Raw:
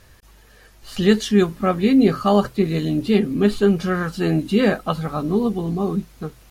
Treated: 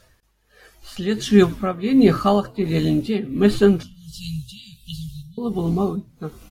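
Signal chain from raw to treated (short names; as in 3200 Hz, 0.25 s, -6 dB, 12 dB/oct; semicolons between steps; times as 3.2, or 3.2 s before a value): 3.83–5.38 Chebyshev band-stop 140–3100 Hz, order 4; frequency-shifting echo 99 ms, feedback 61%, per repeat -79 Hz, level -22 dB; tremolo 1.4 Hz, depth 71%; spectral noise reduction 10 dB; gain +3 dB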